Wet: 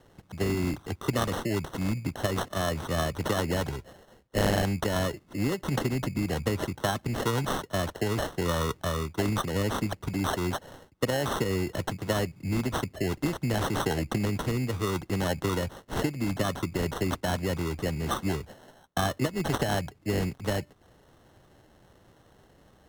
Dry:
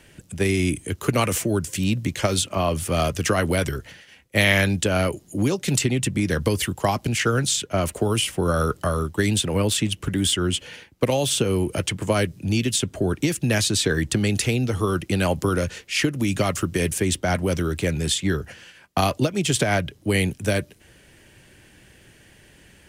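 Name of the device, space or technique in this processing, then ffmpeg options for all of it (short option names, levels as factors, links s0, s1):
crushed at another speed: -af "asetrate=22050,aresample=44100,acrusher=samples=37:mix=1:aa=0.000001,asetrate=88200,aresample=44100,volume=0.473"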